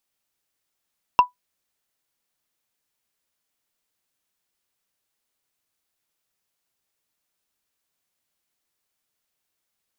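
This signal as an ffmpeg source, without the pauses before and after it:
ffmpeg -f lavfi -i "aevalsrc='0.562*pow(10,-3*t/0.13)*sin(2*PI*989*t)+0.158*pow(10,-3*t/0.038)*sin(2*PI*2726.7*t)+0.0447*pow(10,-3*t/0.017)*sin(2*PI*5344.6*t)+0.0126*pow(10,-3*t/0.009)*sin(2*PI*8834.7*t)+0.00355*pow(10,-3*t/0.006)*sin(2*PI*13193.3*t)':duration=0.45:sample_rate=44100" out.wav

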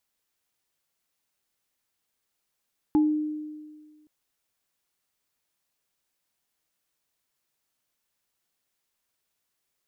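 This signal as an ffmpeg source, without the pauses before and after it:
ffmpeg -f lavfi -i "aevalsrc='0.158*pow(10,-3*t/1.65)*sin(2*PI*304*t)+0.0398*pow(10,-3*t/0.24)*sin(2*PI*846*t)':duration=1.12:sample_rate=44100" out.wav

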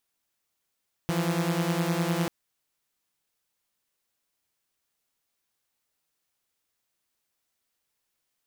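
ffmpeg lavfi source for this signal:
ffmpeg -f lavfi -i "aevalsrc='0.0562*((2*mod(164.81*t,1)-1)+(2*mod(174.61*t,1)-1))':duration=1.19:sample_rate=44100" out.wav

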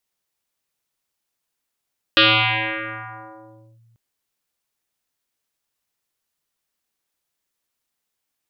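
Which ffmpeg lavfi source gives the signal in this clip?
ffmpeg -f lavfi -i "aevalsrc='0.355*pow(10,-3*t/2.35)*sin(2*PI*115*t+8.6*clip(1-t/1.62,0,1)*sin(2*PI*3.8*115*t))':duration=1.79:sample_rate=44100" out.wav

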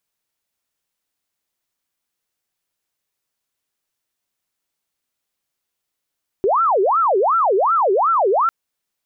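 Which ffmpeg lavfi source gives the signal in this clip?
ffmpeg -f lavfi -i "aevalsrc='0.224*sin(2*PI*(867*t-493/(2*PI*2.7)*sin(2*PI*2.7*t)))':duration=2.05:sample_rate=44100" out.wav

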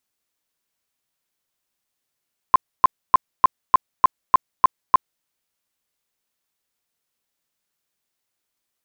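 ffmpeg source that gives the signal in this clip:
ffmpeg -f lavfi -i "aevalsrc='0.473*sin(2*PI*1040*mod(t,0.3))*lt(mod(t,0.3),18/1040)':duration=2.7:sample_rate=44100" out.wav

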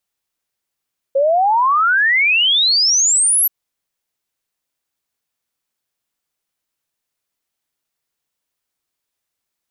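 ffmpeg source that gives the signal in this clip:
ffmpeg -f lavfi -i "aevalsrc='0.282*clip(min(t,2.33-t)/0.01,0,1)*sin(2*PI*530*2.33/log(12000/530)*(exp(log(12000/530)*t/2.33)-1))':duration=2.33:sample_rate=44100" out.wav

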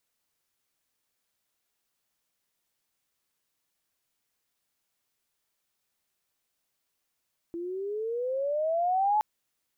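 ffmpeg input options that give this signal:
ffmpeg -f lavfi -i "aevalsrc='pow(10,(-21+11.5*(t/1.67-1))/20)*sin(2*PI*334*1.67/(16.5*log(2)/12)*(exp(16.5*log(2)/12*t/1.67)-1))':duration=1.67:sample_rate=44100" out.wav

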